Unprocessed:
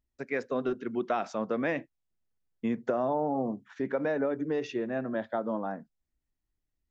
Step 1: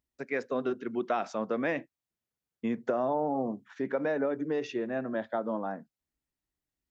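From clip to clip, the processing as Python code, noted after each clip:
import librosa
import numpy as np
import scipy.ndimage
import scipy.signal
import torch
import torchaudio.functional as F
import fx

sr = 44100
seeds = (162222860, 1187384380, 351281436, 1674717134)

y = fx.highpass(x, sr, hz=130.0, slope=6)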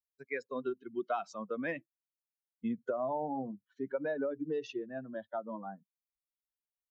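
y = fx.bin_expand(x, sr, power=2.0)
y = F.gain(torch.from_numpy(y), -1.5).numpy()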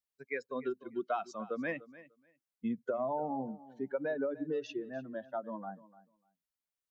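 y = fx.echo_feedback(x, sr, ms=297, feedback_pct=16, wet_db=-18.0)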